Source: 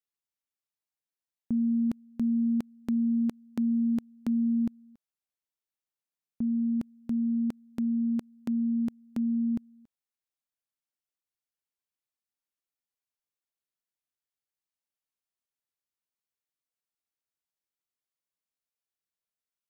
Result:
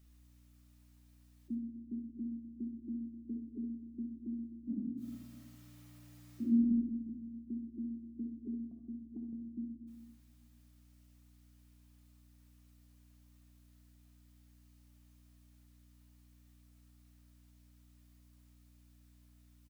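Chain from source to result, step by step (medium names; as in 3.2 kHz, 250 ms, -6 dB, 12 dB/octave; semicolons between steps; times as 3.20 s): spectral gate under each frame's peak -15 dB strong; high-pass 440 Hz 24 dB/octave; 8.71–9.33 s: compression, threshold -55 dBFS, peak gain reduction 6.5 dB; peak limiter -49 dBFS, peak gain reduction 4.5 dB; hum 60 Hz, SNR 21 dB; 4.66–6.59 s: reverb throw, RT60 1 s, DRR -11.5 dB; early reflections 64 ms -9.5 dB, 76 ms -9 dB; reverberation RT60 1.0 s, pre-delay 5 ms, DRR 7 dB; trim +16.5 dB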